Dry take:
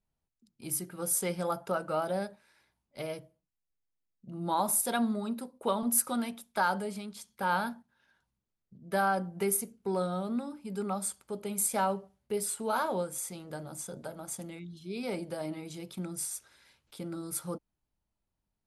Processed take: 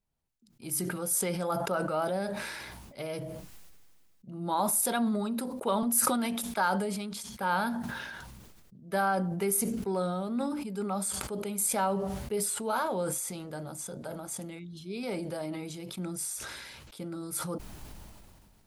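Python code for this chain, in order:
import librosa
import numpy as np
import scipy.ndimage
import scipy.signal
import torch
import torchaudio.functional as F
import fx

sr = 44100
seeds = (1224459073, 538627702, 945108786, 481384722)

y = fx.sustainer(x, sr, db_per_s=27.0)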